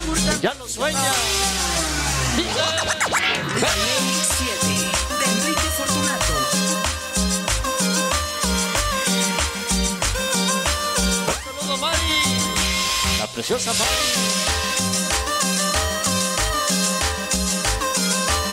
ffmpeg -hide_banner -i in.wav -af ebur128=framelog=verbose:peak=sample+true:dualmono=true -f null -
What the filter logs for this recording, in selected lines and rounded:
Integrated loudness:
  I:         -16.5 LUFS
  Threshold: -26.5 LUFS
Loudness range:
  LRA:         1.0 LU
  Threshold: -36.5 LUFS
  LRA low:   -17.0 LUFS
  LRA high:  -16.0 LUFS
Sample peak:
  Peak:       -9.1 dBFS
True peak:
  Peak:       -8.3 dBFS